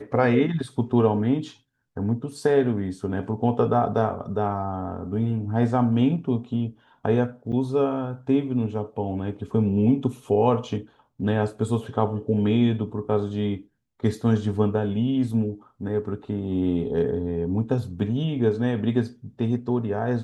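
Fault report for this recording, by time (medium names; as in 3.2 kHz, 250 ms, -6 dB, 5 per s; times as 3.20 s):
7.52–7.53 s: dropout 6.9 ms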